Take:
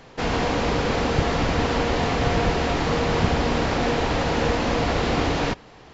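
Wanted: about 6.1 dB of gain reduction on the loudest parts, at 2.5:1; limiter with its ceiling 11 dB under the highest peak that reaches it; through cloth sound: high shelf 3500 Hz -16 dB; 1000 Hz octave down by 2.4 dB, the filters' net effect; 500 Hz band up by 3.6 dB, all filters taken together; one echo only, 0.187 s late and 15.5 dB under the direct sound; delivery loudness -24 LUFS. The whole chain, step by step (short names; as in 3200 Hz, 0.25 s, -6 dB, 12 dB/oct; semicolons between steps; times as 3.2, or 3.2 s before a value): bell 500 Hz +5.5 dB; bell 1000 Hz -4.5 dB; compressor 2.5:1, threshold -24 dBFS; limiter -22.5 dBFS; high shelf 3500 Hz -16 dB; echo 0.187 s -15.5 dB; gain +8 dB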